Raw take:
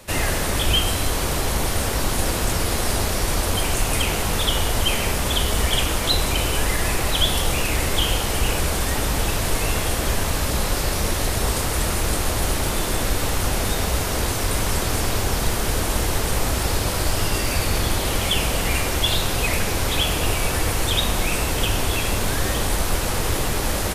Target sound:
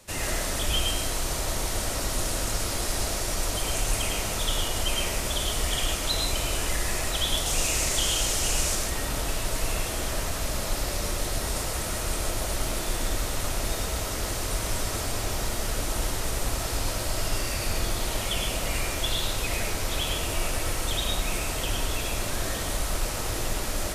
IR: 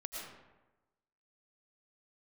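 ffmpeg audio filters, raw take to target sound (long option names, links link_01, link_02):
-filter_complex "[0:a]asetnsamples=nb_out_samples=441:pad=0,asendcmd='7.46 equalizer g 13.5;8.75 equalizer g 3.5',equalizer=frequency=6800:width=0.95:gain=6[link_01];[1:a]atrim=start_sample=2205,atrim=end_sample=6615[link_02];[link_01][link_02]afir=irnorm=-1:irlink=0,volume=-5.5dB"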